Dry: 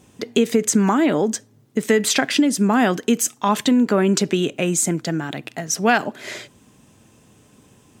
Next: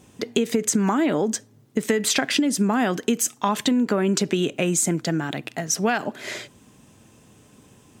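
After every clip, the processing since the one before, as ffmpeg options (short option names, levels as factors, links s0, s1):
-af "acompressor=threshold=0.141:ratio=6"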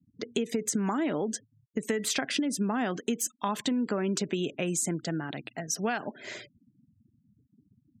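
-af "afftfilt=real='re*gte(hypot(re,im),0.0141)':imag='im*gte(hypot(re,im),0.0141)':win_size=1024:overlap=0.75,volume=0.398"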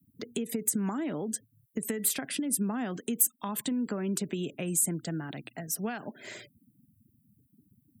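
-filter_complex "[0:a]acrossover=split=260[s0][s1];[s1]acompressor=threshold=0.00501:ratio=1.5[s2];[s0][s2]amix=inputs=2:normalize=0,aexciter=amount=8.8:drive=6.4:freq=8700"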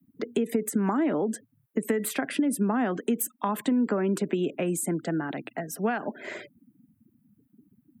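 -filter_complex "[0:a]acontrast=58,acrossover=split=200 2300:gain=0.141 1 0.178[s0][s1][s2];[s0][s1][s2]amix=inputs=3:normalize=0,volume=1.41"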